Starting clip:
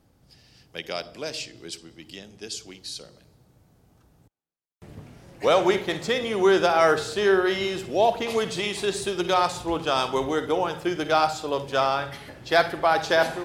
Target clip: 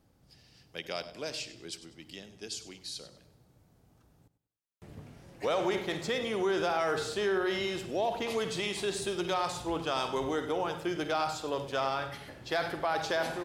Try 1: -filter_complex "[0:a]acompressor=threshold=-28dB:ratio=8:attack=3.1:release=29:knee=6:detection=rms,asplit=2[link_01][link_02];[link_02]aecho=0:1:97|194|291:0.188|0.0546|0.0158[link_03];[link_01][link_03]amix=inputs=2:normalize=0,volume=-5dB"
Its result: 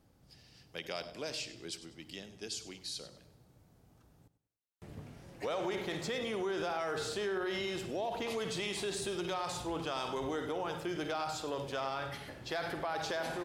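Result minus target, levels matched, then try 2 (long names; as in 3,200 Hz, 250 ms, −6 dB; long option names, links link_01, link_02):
downward compressor: peak gain reduction +6.5 dB
-filter_complex "[0:a]acompressor=threshold=-20.5dB:ratio=8:attack=3.1:release=29:knee=6:detection=rms,asplit=2[link_01][link_02];[link_02]aecho=0:1:97|194|291:0.188|0.0546|0.0158[link_03];[link_01][link_03]amix=inputs=2:normalize=0,volume=-5dB"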